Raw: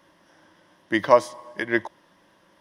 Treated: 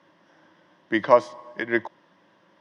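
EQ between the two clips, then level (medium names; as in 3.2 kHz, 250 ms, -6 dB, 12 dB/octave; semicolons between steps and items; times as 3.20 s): high-pass 110 Hz 24 dB/octave; distance through air 120 m; 0.0 dB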